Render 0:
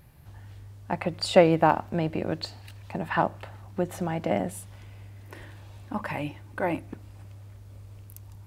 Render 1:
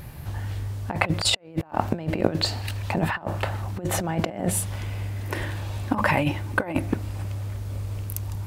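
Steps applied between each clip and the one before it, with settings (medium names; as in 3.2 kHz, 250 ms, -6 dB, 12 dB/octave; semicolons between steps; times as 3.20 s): compressor with a negative ratio -33 dBFS, ratio -0.5; trim +8.5 dB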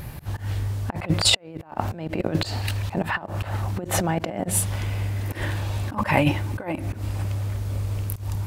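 slow attack 119 ms; trim +4 dB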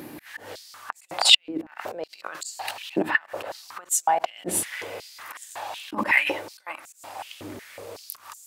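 hum 60 Hz, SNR 15 dB; step-sequenced high-pass 5.4 Hz 310–7300 Hz; trim -2 dB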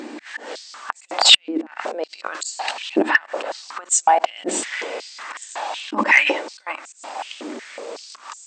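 sine folder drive 5 dB, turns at -1 dBFS; brick-wall FIR band-pass 200–8500 Hz; trim -2 dB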